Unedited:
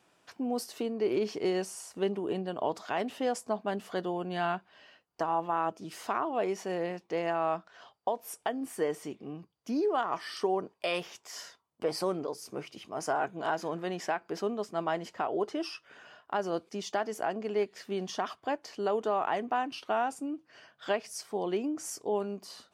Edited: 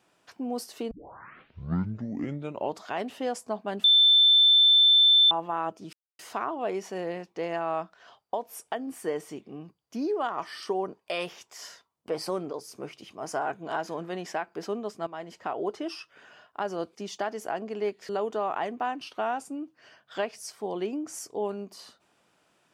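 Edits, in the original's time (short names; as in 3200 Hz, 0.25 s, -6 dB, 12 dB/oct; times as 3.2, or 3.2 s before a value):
0.91 tape start 1.88 s
3.84–5.31 bleep 3540 Hz -15 dBFS
5.93 insert silence 0.26 s
14.81–15.24 fade in, from -12.5 dB
17.83–18.8 cut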